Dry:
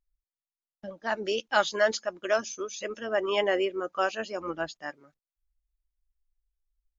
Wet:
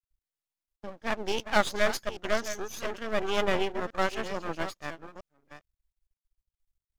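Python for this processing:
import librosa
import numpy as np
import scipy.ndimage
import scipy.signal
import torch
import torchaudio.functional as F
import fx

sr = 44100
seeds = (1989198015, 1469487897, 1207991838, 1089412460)

y = fx.reverse_delay(x, sr, ms=434, wet_db=-11.5)
y = np.maximum(y, 0.0)
y = F.gain(torch.from_numpy(y), 2.5).numpy()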